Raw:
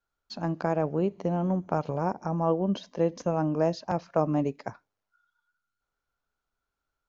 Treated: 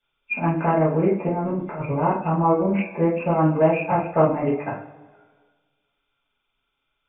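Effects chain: nonlinear frequency compression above 2000 Hz 4:1; notches 60/120/180 Hz; reverb removal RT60 0.57 s; 1.28–1.85 negative-ratio compressor -33 dBFS, ratio -0.5; two-slope reverb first 0.39 s, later 1.6 s, from -18 dB, DRR -9 dB; Doppler distortion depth 0.13 ms

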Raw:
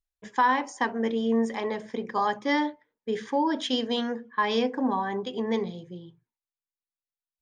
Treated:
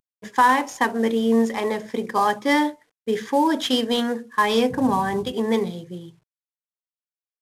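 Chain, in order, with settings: CVSD 64 kbps; 4.69–5.31 band noise 79–230 Hz -43 dBFS; gain +6 dB

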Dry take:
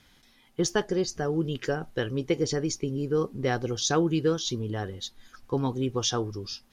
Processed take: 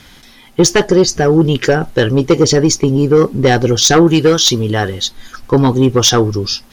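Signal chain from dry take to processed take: 4.07–5.02 tilt shelf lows -3.5 dB, about 730 Hz; in parallel at -5 dB: sine folder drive 10 dB, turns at -9.5 dBFS; on the sum: gain +7 dB

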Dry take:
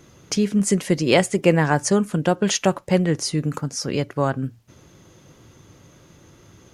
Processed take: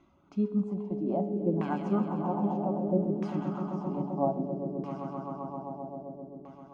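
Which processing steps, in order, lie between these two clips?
reverb removal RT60 1.5 s; harmonic-percussive split percussive -13 dB; fixed phaser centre 470 Hz, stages 6; resonator 140 Hz, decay 0.9 s, harmonics all, mix 70%; swelling echo 0.131 s, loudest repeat 5, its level -9 dB; LFO low-pass saw down 0.62 Hz 420–2000 Hz; gain +4.5 dB

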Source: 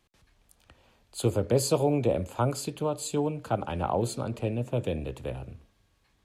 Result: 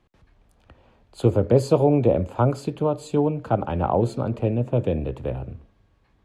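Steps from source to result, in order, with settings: LPF 1100 Hz 6 dB/oct; gain +7.5 dB

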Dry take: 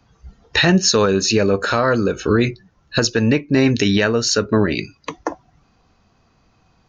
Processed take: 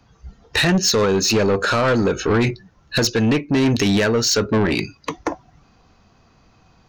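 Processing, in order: in parallel at +0.5 dB: vocal rider; on the sum: soft clip -9.5 dBFS, distortion -10 dB; gain -3 dB

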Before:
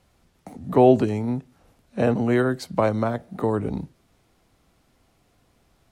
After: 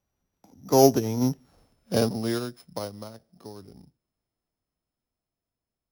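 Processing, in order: sample sorter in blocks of 8 samples; Doppler pass-by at 1.47, 19 m/s, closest 4.6 m; upward expander 1.5:1, over -41 dBFS; gain +8 dB

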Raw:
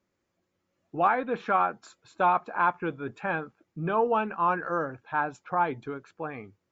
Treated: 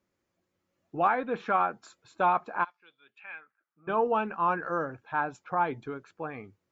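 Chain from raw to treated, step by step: 2.63–3.87 band-pass 5600 Hz -> 1100 Hz, Q 4.3; gain -1.5 dB

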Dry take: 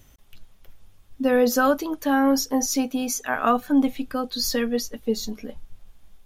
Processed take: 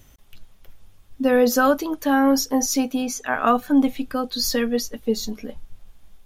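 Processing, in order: 3.01–3.46 high shelf 6500 Hz -> 12000 Hz -11 dB; gain +2 dB

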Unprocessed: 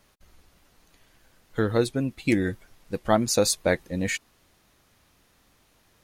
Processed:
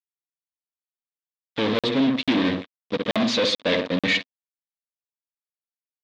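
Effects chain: on a send: darkening echo 64 ms, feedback 34%, low-pass 800 Hz, level -7.5 dB; on the sum: fuzz box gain 37 dB, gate -41 dBFS; speaker cabinet 240–4200 Hz, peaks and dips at 260 Hz +5 dB, 370 Hz -8 dB, 810 Hz -8 dB, 1400 Hz -7 dB, 3600 Hz +8 dB; crackling interface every 0.44 s, samples 2048, zero, from 0.47; gain -3.5 dB

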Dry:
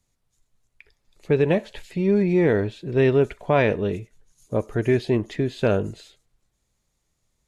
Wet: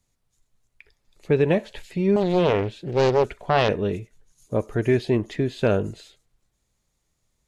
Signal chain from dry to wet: 2.16–3.69 Doppler distortion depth 0.77 ms

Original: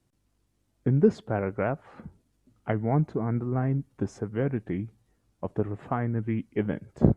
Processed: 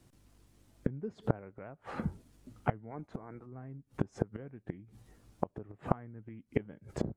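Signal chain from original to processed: 2.9–3.45 spectral limiter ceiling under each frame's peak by 15 dB; flipped gate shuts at -24 dBFS, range -29 dB; gain +9 dB

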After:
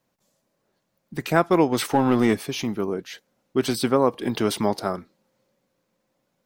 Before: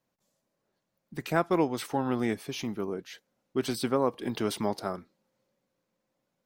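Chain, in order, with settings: 1.72–2.46 sample leveller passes 1; gain +7 dB

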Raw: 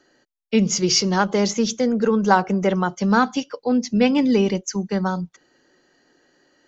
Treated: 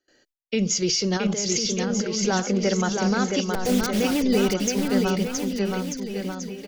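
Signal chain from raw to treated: 3.49–4.21 level-crossing sampler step -24.5 dBFS; gate with hold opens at -51 dBFS; ten-band EQ 125 Hz -7 dB, 250 Hz -5 dB, 1000 Hz -11 dB; 1.17–2.26 negative-ratio compressor -31 dBFS, ratio -1; limiter -17 dBFS, peak gain reduction 11 dB; on a send: bouncing-ball echo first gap 0.67 s, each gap 0.85×, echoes 5; on the sum: gain +3 dB

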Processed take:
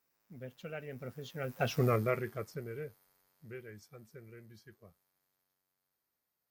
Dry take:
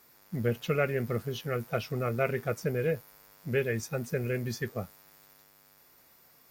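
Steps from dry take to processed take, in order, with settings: Doppler pass-by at 1.82, 25 m/s, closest 3.1 m; gain +4 dB

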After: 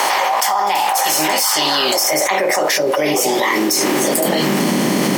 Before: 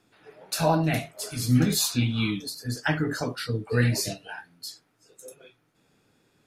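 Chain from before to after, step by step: per-bin compression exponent 0.6; high-pass sweep 650 Hz -> 170 Hz, 2.08–5.79; wide varispeed 1.25×; fast leveller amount 100%; gain -3.5 dB

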